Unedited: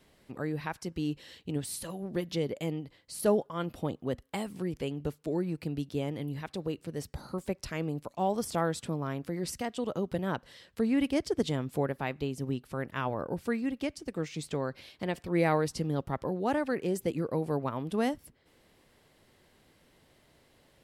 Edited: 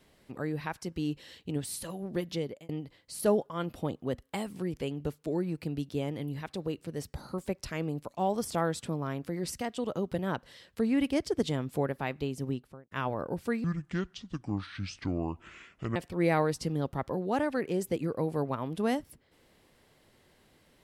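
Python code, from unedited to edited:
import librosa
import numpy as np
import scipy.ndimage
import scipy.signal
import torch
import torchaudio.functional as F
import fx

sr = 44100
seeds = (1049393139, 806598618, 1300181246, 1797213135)

y = fx.studio_fade_out(x, sr, start_s=12.46, length_s=0.45)
y = fx.edit(y, sr, fx.fade_out_span(start_s=2.17, length_s=0.52, curve='qsin'),
    fx.speed_span(start_s=13.64, length_s=1.46, speed=0.63), tone=tone)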